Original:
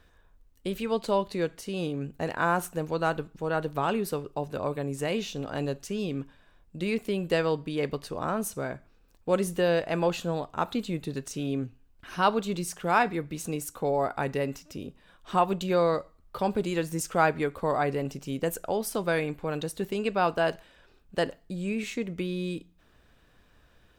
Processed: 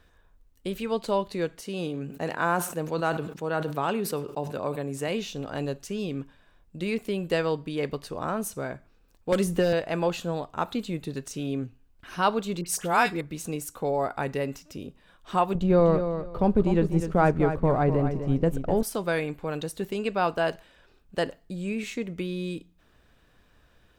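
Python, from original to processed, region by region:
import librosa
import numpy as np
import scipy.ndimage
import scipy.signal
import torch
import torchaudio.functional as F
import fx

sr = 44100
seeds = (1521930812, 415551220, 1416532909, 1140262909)

y = fx.chain(x, sr, fx.highpass(hz=120.0, slope=12),
    fx.echo_single(ms=101, db=-23.0),
    fx.sustainer(db_per_s=83.0), at=(1.6, 5.08))
y = fx.chain(y, sr, fx.clip_hard(threshold_db=-19.0),
    fx.low_shelf(hz=210.0, db=7.0),
    fx.band_squash(depth_pct=100), at=(9.32, 9.73))
y = fx.chain(y, sr, fx.peak_eq(hz=13000.0, db=8.0, octaves=2.8),
    fx.dispersion(late='highs', ms=54.0, hz=1600.0), at=(12.61, 13.21))
y = fx.chain(y, sr, fx.law_mismatch(coded='A'),
    fx.tilt_eq(slope=-4.0),
    fx.echo_feedback(ms=250, feedback_pct=21, wet_db=-9), at=(15.55, 18.83))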